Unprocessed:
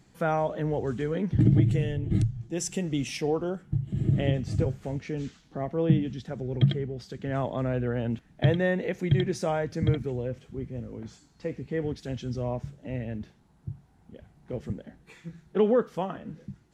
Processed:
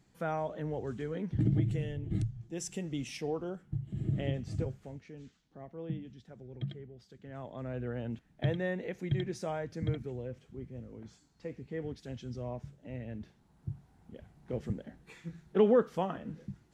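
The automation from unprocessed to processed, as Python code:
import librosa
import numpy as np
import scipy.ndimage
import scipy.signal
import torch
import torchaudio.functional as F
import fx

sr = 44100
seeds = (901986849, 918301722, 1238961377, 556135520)

y = fx.gain(x, sr, db=fx.line((4.61, -8.0), (5.11, -16.0), (7.34, -16.0), (7.84, -8.5), (12.98, -8.5), (13.7, -2.0)))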